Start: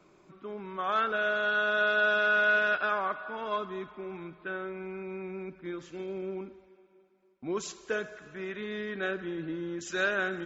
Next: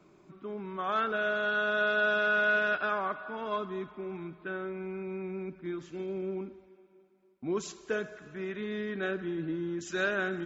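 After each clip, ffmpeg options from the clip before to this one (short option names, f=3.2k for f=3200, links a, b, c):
-af "equalizer=f=180:w=0.43:g=5.5,bandreject=f=520:w=12,volume=-2.5dB"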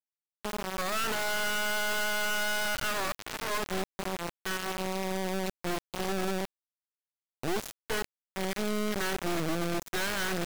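-af "alimiter=level_in=1.5dB:limit=-24dB:level=0:latency=1:release=50,volume=-1.5dB,acrusher=bits=3:dc=4:mix=0:aa=0.000001,volume=5.5dB"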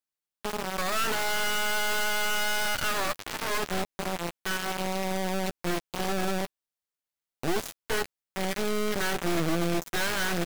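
-filter_complex "[0:a]asplit=2[a][b];[b]adelay=12,volume=-10dB[c];[a][c]amix=inputs=2:normalize=0,volume=2.5dB"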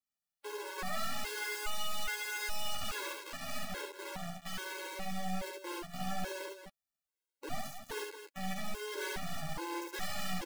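-af "aeval=exprs='0.0631*(abs(mod(val(0)/0.0631+3,4)-2)-1)':c=same,aecho=1:1:69.97|230.3:0.708|0.355,afftfilt=real='re*gt(sin(2*PI*1.2*pts/sr)*(1-2*mod(floor(b*sr/1024/280),2)),0)':imag='im*gt(sin(2*PI*1.2*pts/sr)*(1-2*mod(floor(b*sr/1024/280),2)),0)':win_size=1024:overlap=0.75,volume=-1.5dB"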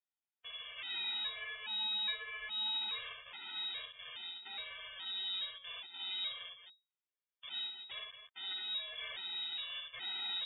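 -filter_complex "[0:a]asplit=2[a][b];[b]asoftclip=type=hard:threshold=-33dB,volume=-11dB[c];[a][c]amix=inputs=2:normalize=0,lowpass=f=3.2k:t=q:w=0.5098,lowpass=f=3.2k:t=q:w=0.6013,lowpass=f=3.2k:t=q:w=0.9,lowpass=f=3.2k:t=q:w=2.563,afreqshift=-3800,volume=-7dB"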